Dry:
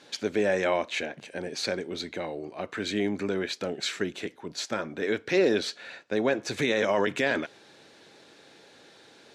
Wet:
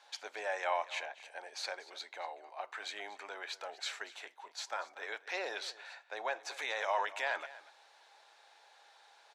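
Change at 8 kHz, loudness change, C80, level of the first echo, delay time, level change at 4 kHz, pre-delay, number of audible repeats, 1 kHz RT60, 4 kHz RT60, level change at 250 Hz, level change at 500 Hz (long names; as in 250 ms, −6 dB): −9.0 dB, −10.5 dB, no reverb audible, −17.5 dB, 237 ms, −8.5 dB, no reverb audible, 1, no reverb audible, no reverb audible, −30.5 dB, −15.0 dB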